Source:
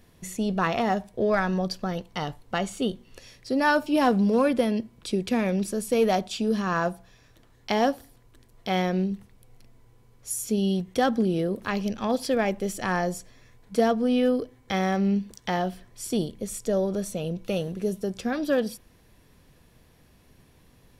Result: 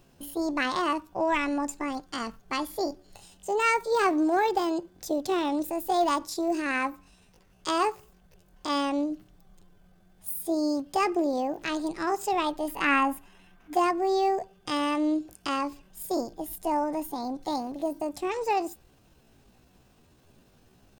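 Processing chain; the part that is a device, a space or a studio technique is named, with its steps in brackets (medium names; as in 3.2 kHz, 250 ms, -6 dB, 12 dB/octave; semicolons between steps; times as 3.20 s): chipmunk voice (pitch shift +7.5 st); 12.68–13.76 s: graphic EQ 125/250/500/1000/2000/4000/8000 Hz -6/+6/-3/+5/+9/-3/-4 dB; trim -2.5 dB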